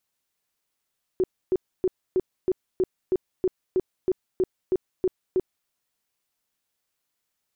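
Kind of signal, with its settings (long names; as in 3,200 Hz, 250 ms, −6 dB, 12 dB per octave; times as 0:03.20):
tone bursts 371 Hz, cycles 14, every 0.32 s, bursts 14, −18 dBFS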